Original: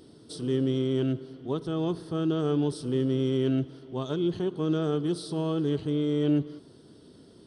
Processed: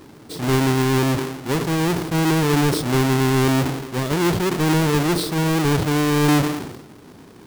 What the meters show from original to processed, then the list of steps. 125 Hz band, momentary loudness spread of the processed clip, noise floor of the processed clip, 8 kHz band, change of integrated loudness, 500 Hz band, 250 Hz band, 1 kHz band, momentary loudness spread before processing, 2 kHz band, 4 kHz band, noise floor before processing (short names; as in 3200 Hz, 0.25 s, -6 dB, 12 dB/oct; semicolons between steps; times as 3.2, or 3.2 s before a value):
+10.5 dB, 7 LU, -44 dBFS, +21.0 dB, +9.0 dB, +6.5 dB, +7.5 dB, +18.0 dB, 8 LU, +22.5 dB, +13.5 dB, -53 dBFS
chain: half-waves squared off; sustainer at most 57 dB/s; gain +4 dB